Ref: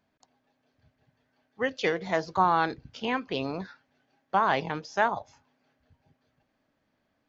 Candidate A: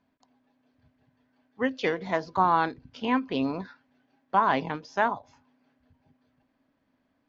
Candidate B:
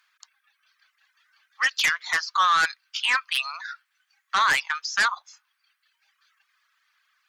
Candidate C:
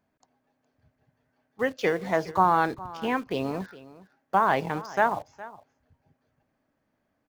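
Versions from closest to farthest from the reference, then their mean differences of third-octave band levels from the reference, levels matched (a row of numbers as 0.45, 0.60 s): A, C, B; 2.0, 4.5, 13.0 dB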